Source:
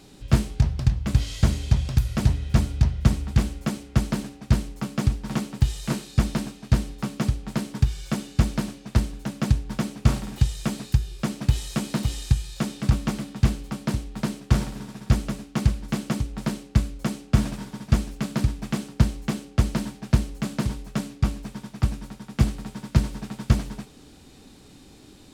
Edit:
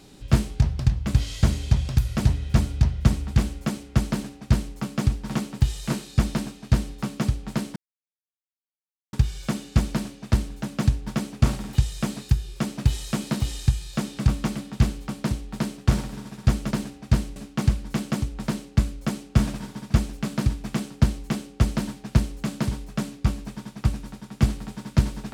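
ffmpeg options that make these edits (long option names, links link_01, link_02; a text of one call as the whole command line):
ffmpeg -i in.wav -filter_complex "[0:a]asplit=4[link_01][link_02][link_03][link_04];[link_01]atrim=end=7.76,asetpts=PTS-STARTPTS,afade=type=out:start_time=7.756:duration=0.004:curve=hsin,apad=pad_dur=1.37[link_05];[link_02]atrim=start=7.76:end=15.342,asetpts=PTS-STARTPTS,afade=type=in:duration=0.004:curve=hsin[link_06];[link_03]atrim=start=4.098:end=4.752[link_07];[link_04]atrim=start=15.338[link_08];[link_05][link_06]concat=n=2:v=0:a=1[link_09];[link_09][link_07]acrossfade=duration=0.004:curve1=hsin:curve2=hsin[link_10];[link_10][link_08]acrossfade=duration=0.004:curve1=hsin:curve2=hsin" out.wav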